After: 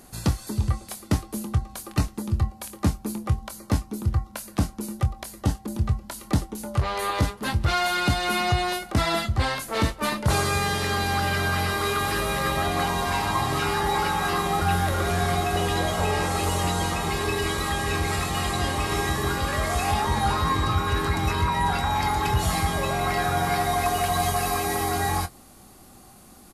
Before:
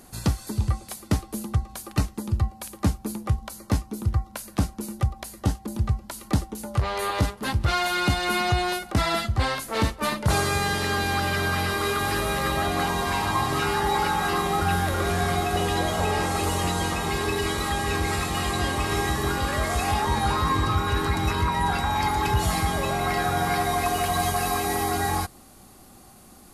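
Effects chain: doubling 24 ms -11.5 dB

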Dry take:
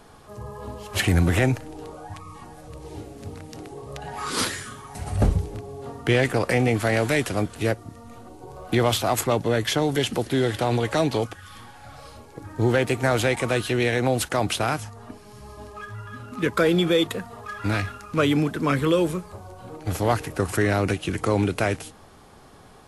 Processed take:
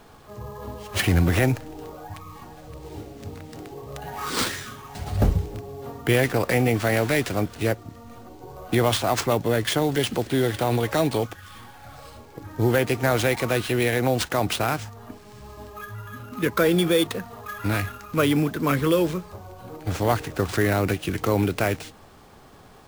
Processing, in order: sample-rate reducer 13 kHz, jitter 0%

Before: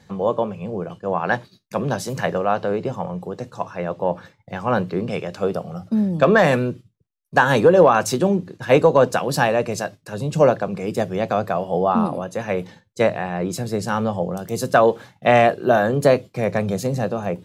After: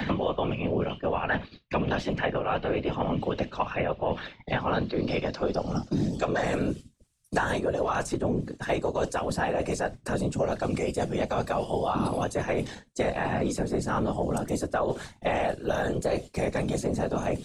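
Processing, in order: low-pass sweep 2.8 kHz -> 8.9 kHz, 4.02–6.65 s; reverse; compression 6:1, threshold -25 dBFS, peak gain reduction 16 dB; reverse; whisper effect; three bands compressed up and down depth 100%

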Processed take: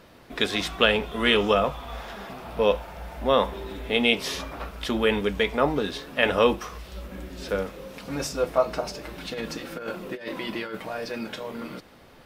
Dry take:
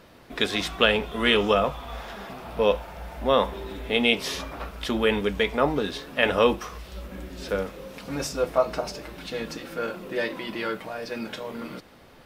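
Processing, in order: 9.04–11.15 s: compressor with a negative ratio -31 dBFS, ratio -0.5

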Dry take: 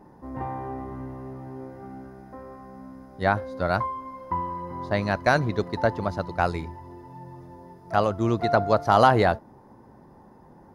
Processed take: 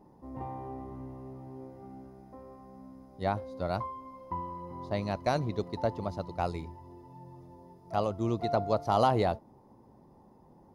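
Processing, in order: peaking EQ 1.6 kHz -12 dB 0.59 oct; trim -6.5 dB

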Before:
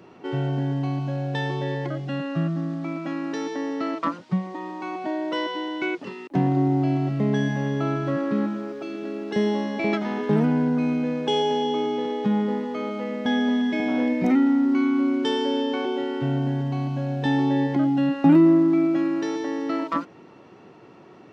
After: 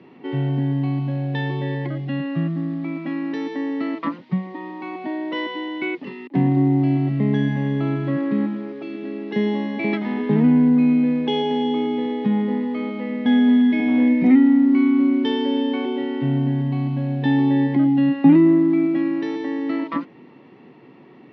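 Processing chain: cabinet simulation 130–4100 Hz, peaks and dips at 140 Hz +6 dB, 250 Hz +8 dB, 640 Hz -5 dB, 1.4 kHz -8 dB, 2 kHz +6 dB

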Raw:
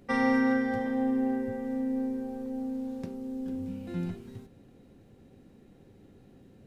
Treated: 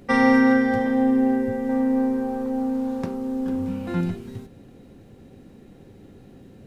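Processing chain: 1.69–4.01 s: peaking EQ 1.1 kHz +10 dB 1.3 oct; trim +8.5 dB

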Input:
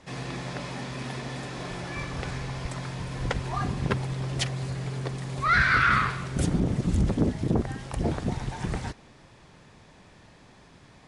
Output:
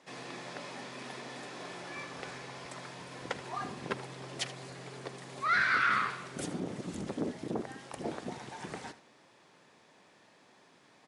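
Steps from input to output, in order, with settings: high-pass 280 Hz 12 dB/octave; on a send: delay 78 ms -15.5 dB; on the sum: trim -6 dB

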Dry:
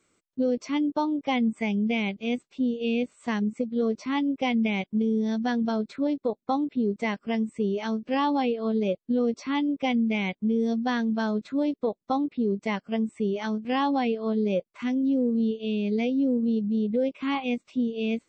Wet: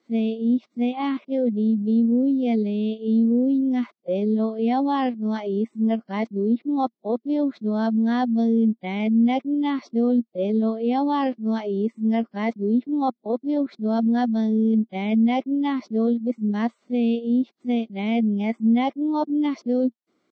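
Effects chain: reverse the whole clip; tempo 0.9×; cabinet simulation 170–5000 Hz, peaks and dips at 230 Hz +7 dB, 340 Hz +5 dB, 710 Hz +6 dB, 1.5 kHz -3 dB, 2.6 kHz -8 dB

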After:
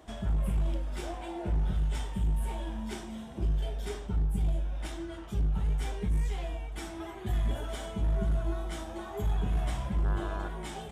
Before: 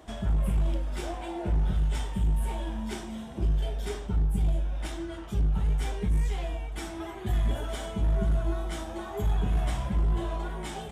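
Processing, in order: 10.04–10.47 s: mains buzz 100 Hz, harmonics 17, -39 dBFS -1 dB/octave; trim -3 dB

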